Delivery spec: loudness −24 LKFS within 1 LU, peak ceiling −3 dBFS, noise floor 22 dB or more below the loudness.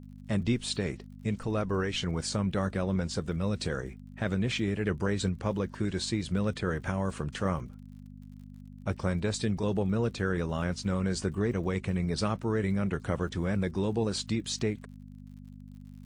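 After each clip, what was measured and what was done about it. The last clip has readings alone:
crackle rate 55 per second; mains hum 50 Hz; hum harmonics up to 250 Hz; level of the hum −46 dBFS; integrated loudness −31.0 LKFS; sample peak −14.5 dBFS; target loudness −24.0 LKFS
→ click removal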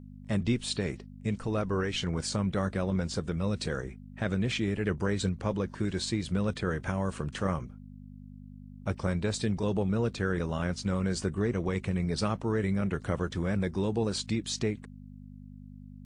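crackle rate 0.19 per second; mains hum 50 Hz; hum harmonics up to 250 Hz; level of the hum −46 dBFS
→ hum removal 50 Hz, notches 5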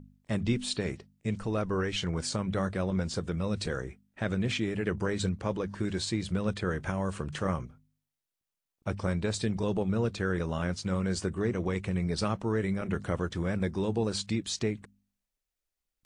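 mains hum none found; integrated loudness −32.0 LKFS; sample peak −15.0 dBFS; target loudness −24.0 LKFS
→ level +8 dB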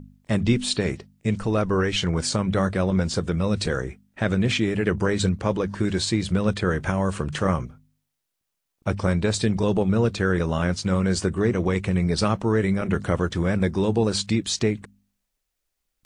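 integrated loudness −24.0 LKFS; sample peak −7.0 dBFS; background noise floor −80 dBFS

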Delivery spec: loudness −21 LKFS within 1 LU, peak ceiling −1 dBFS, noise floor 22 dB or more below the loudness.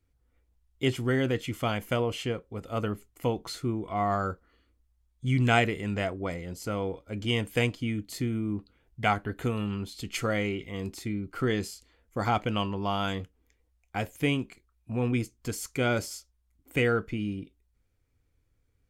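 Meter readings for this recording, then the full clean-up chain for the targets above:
integrated loudness −30.5 LKFS; sample peak −9.0 dBFS; target loudness −21.0 LKFS
→ level +9.5 dB
brickwall limiter −1 dBFS

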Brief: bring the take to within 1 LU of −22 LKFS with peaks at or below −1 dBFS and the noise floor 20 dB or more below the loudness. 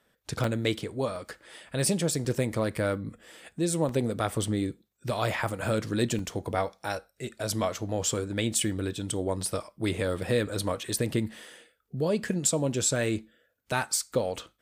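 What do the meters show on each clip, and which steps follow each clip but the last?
number of dropouts 5; longest dropout 2.4 ms; integrated loudness −29.5 LKFS; sample peak −12.0 dBFS; target loudness −22.0 LKFS
→ repair the gap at 0:00.44/0:01.16/0:02.25/0:03.89/0:06.19, 2.4 ms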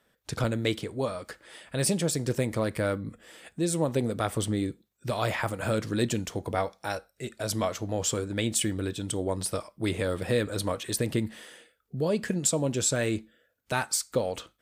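number of dropouts 0; integrated loudness −29.5 LKFS; sample peak −12.0 dBFS; target loudness −22.0 LKFS
→ level +7.5 dB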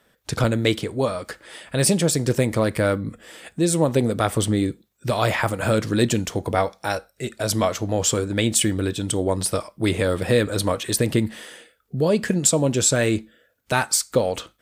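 integrated loudness −22.0 LKFS; sample peak −4.5 dBFS; background noise floor −65 dBFS

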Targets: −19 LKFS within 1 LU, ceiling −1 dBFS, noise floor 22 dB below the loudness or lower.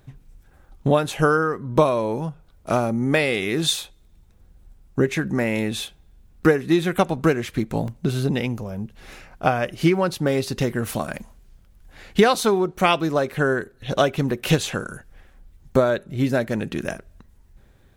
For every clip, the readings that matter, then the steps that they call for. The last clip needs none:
number of dropouts 1; longest dropout 1.6 ms; integrated loudness −22.5 LKFS; sample peak −2.5 dBFS; target loudness −19.0 LKFS
→ repair the gap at 0:07.88, 1.6 ms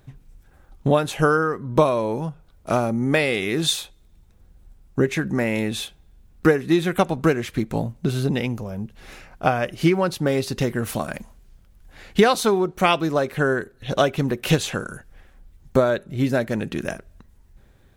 number of dropouts 0; integrated loudness −22.5 LKFS; sample peak −2.5 dBFS; target loudness −19.0 LKFS
→ level +3.5 dB
brickwall limiter −1 dBFS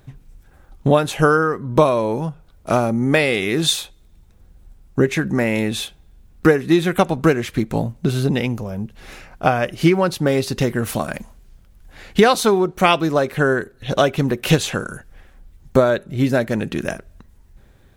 integrated loudness −19.0 LKFS; sample peak −1.0 dBFS; background noise floor −51 dBFS

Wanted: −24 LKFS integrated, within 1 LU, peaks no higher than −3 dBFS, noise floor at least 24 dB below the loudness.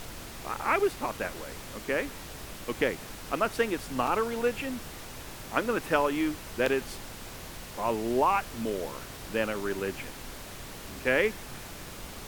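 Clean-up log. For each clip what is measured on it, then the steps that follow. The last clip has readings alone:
number of dropouts 3; longest dropout 3.2 ms; background noise floor −43 dBFS; target noise floor −55 dBFS; integrated loudness −30.5 LKFS; sample peak −8.0 dBFS; target loudness −24.0 LKFS
→ repair the gap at 0:04.07/0:06.66/0:09.59, 3.2 ms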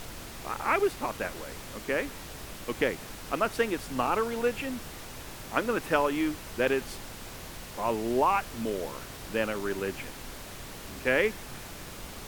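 number of dropouts 0; background noise floor −43 dBFS; target noise floor −55 dBFS
→ noise reduction from a noise print 12 dB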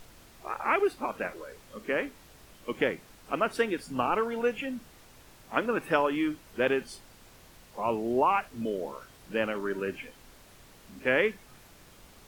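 background noise floor −55 dBFS; integrated loudness −30.0 LKFS; sample peak −8.0 dBFS; target loudness −24.0 LKFS
→ level +6 dB
brickwall limiter −3 dBFS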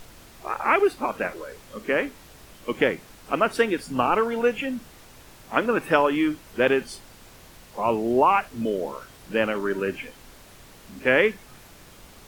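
integrated loudness −24.0 LKFS; sample peak −3.0 dBFS; background noise floor −49 dBFS

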